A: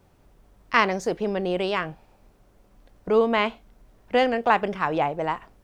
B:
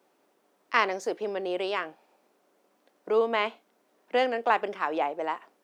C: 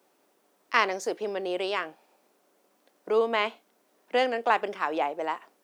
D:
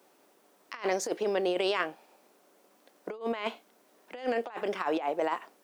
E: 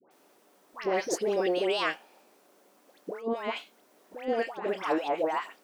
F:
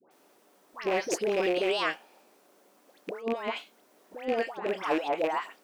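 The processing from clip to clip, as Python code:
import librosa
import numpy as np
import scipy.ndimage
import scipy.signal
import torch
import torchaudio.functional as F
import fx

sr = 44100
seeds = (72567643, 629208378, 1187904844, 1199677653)

y1 = scipy.signal.sosfilt(scipy.signal.butter(4, 280.0, 'highpass', fs=sr, output='sos'), x)
y1 = y1 * librosa.db_to_amplitude(-4.0)
y2 = fx.high_shelf(y1, sr, hz=4700.0, db=6.5)
y3 = fx.over_compress(y2, sr, threshold_db=-30.0, ratio=-0.5)
y4 = fx.dispersion(y3, sr, late='highs', ms=111.0, hz=1200.0)
y4 = y4 * librosa.db_to_amplitude(1.5)
y5 = fx.rattle_buzz(y4, sr, strikes_db=-39.0, level_db=-25.0)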